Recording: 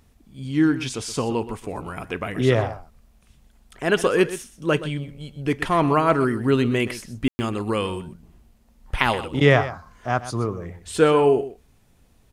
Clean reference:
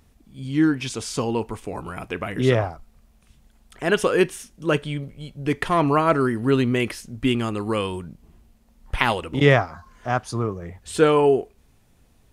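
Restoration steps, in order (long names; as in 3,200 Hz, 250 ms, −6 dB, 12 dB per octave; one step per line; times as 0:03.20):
ambience match 0:07.28–0:07.39
echo removal 124 ms −14 dB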